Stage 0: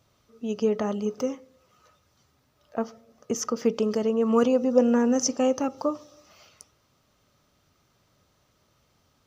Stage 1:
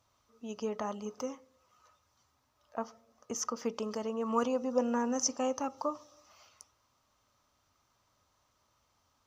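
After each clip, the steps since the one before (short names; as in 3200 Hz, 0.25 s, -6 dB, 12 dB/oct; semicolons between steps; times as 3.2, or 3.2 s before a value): fifteen-band EQ 160 Hz -9 dB, 400 Hz -5 dB, 1000 Hz +8 dB, 6300 Hz +4 dB; gain -8 dB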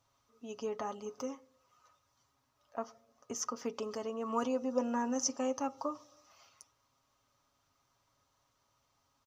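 comb 7.3 ms, depth 44%; gain -3 dB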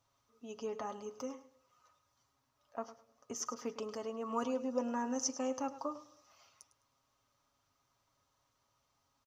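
feedback echo 0.104 s, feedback 25%, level -14.5 dB; gain -2.5 dB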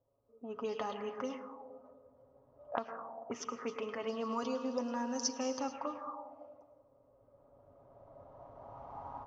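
recorder AGC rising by 9.5 dB/s; plate-style reverb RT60 1.8 s, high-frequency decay 0.75×, pre-delay 95 ms, DRR 8.5 dB; envelope low-pass 510–4700 Hz up, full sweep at -31.5 dBFS; gain -2 dB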